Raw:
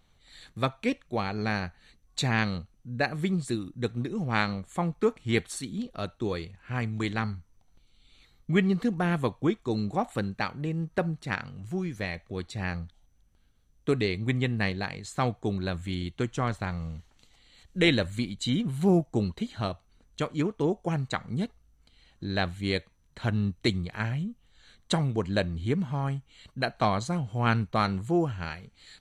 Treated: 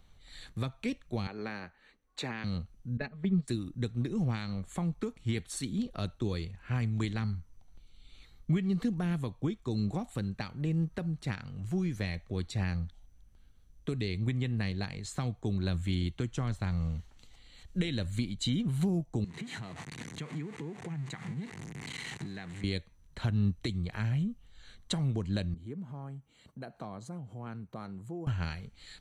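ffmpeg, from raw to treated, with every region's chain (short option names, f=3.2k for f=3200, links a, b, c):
-filter_complex "[0:a]asettb=1/sr,asplit=3[a][b][c];[a]atrim=end=1.274[d];[b]atrim=start=1.27:end=2.44,asetpts=PTS-STARTPTS,afade=t=in:d=0.004:c=qsin,afade=t=out:st=1.166:d=0.004:c=qsin,acrossover=split=260 2700:gain=0.0891 1 0.251[e][f][g];[e][f][g]amix=inputs=3:normalize=0,bandreject=f=710:w=10[h];[c]atrim=start=2.436[i];[d][h]acrossfade=d=0.004:c1=hsin:c2=qsin[j];[j][i]acrossfade=d=0.004:c1=qsin:c2=hsin,asettb=1/sr,asplit=3[k][l][m];[k]atrim=end=2.974[n];[l]atrim=start=2.97:end=3.48,asetpts=PTS-STARTPTS,afade=t=in:d=0.004:c=qsin,afade=t=out:st=0.506:d=0.004:c=qsin,agate=range=-12dB:threshold=-29dB:ratio=16:release=100:detection=peak,lowpass=2.5k,aecho=1:1:4.7:0.99,atrim=end_sample=22491[o];[m]atrim=start=3.476[p];[n][o]acrossfade=d=0.004:c1=hsin:c2=qsin[q];[q][p]acrossfade=d=0.004:c1=qsin:c2=hsin,asettb=1/sr,asplit=3[r][s][t];[r]atrim=end=19.244[u];[s]atrim=start=19.24:end=22.64,asetpts=PTS-STARTPTS,afade=t=in:d=0.004:c=qsin,afade=t=out:st=3.396:d=0.004:c=qsin,aeval=exprs='val(0)+0.5*0.0237*sgn(val(0))':c=same,acompressor=threshold=-38dB:ratio=12:attack=3.2:release=140:knee=1:detection=peak,highpass=f=120:w=0.5412,highpass=f=120:w=1.3066,equalizer=f=150:t=q:w=4:g=6,equalizer=f=590:t=q:w=4:g=-9,equalizer=f=1.3k:t=q:w=4:g=-4,equalizer=f=2k:t=q:w=4:g=8,equalizer=f=3.3k:t=q:w=4:g=-3,equalizer=f=5.2k:t=q:w=4:g=-10,lowpass=f=8.6k:w=0.5412,lowpass=f=8.6k:w=1.3066[v];[t]atrim=start=22.636[w];[u][v]acrossfade=d=0.004:c1=hsin:c2=qsin[x];[x][w]acrossfade=d=0.004:c1=qsin:c2=hsin,asettb=1/sr,asplit=3[y][z][aa];[y]atrim=end=25.544[ab];[z]atrim=start=25.54:end=28.27,asetpts=PTS-STARTPTS,afade=t=in:d=0.004:c=qsin,afade=t=out:st=2.726:d=0.004:c=qsin,equalizer=f=3.4k:t=o:w=2.9:g=-11,acompressor=threshold=-43dB:ratio=2.5:attack=3.2:release=140:knee=1:detection=peak,highpass=150[ac];[aa]atrim=start=28.266[ad];[ab][ac]acrossfade=d=0.004:c1=hsin:c2=qsin[ae];[ae][ad]acrossfade=d=0.004:c1=qsin:c2=hsin,lowshelf=f=88:g=8,alimiter=limit=-19dB:level=0:latency=1:release=307,acrossover=split=280|3000[af][ag][ah];[ag]acompressor=threshold=-39dB:ratio=6[ai];[af][ai][ah]amix=inputs=3:normalize=0"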